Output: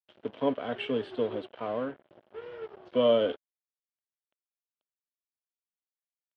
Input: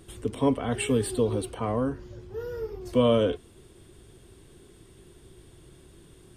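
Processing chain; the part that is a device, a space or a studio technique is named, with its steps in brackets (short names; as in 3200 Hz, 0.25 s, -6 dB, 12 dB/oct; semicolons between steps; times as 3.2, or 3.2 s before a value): 1.47–2.09 elliptic low-pass 3300 Hz; blown loudspeaker (crossover distortion -40.5 dBFS; speaker cabinet 210–3600 Hz, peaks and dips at 610 Hz +8 dB, 1500 Hz +4 dB, 3100 Hz +6 dB); gain -4.5 dB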